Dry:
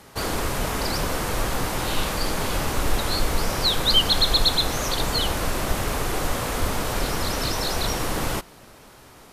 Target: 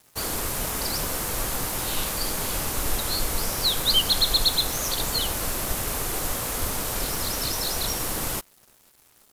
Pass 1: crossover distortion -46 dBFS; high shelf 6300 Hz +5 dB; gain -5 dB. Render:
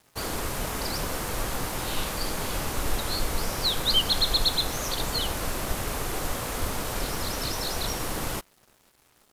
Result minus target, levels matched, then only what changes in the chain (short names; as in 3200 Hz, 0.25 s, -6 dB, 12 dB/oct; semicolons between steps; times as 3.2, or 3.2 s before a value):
8000 Hz band -2.5 dB
change: high shelf 6300 Hz +14.5 dB